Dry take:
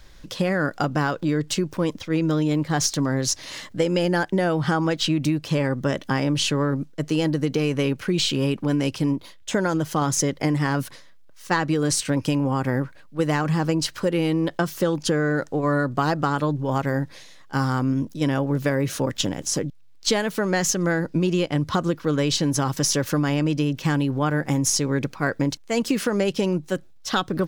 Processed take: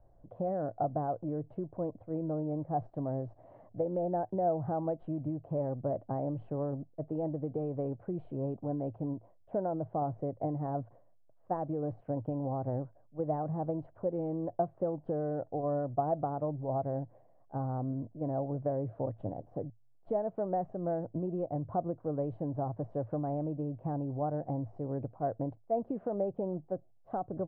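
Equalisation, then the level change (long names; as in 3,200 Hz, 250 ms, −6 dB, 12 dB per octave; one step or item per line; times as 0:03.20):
transistor ladder low-pass 740 Hz, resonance 75%
parametric band 110 Hz +13.5 dB 0.34 octaves
−3.5 dB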